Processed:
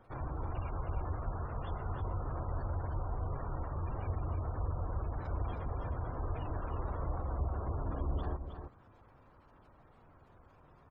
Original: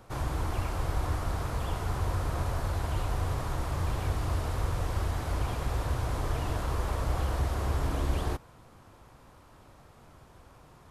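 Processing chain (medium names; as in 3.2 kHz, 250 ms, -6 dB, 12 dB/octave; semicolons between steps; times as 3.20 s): hum notches 60/120/180 Hz; spectral gate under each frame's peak -25 dB strong; delay 315 ms -7.5 dB; trim -6.5 dB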